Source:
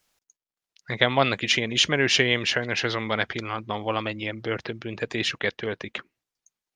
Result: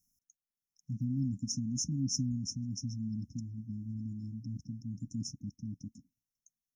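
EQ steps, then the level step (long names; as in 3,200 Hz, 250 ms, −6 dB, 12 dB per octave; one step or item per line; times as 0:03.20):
linear-phase brick-wall band-stop 290–5,200 Hz
parametric band 8,100 Hz −11 dB 0.29 octaves
−2.5 dB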